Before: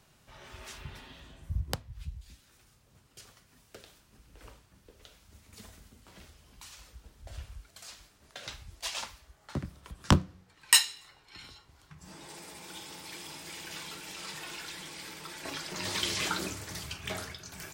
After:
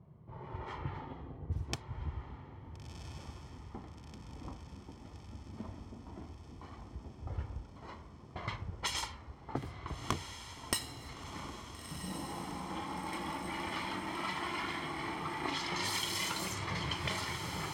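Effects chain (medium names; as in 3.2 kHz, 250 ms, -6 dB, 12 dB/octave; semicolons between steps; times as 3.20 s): comb filter that takes the minimum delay 0.95 ms; high-pass 110 Hz 12 dB/octave; level-controlled noise filter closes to 390 Hz, open at -33.5 dBFS; compression 8:1, threshold -47 dBFS, peak gain reduction 28.5 dB; flange 0.12 Hz, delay 1.8 ms, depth 2.2 ms, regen -34%; echo that smears into a reverb 1383 ms, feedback 68%, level -8 dB; trim +17 dB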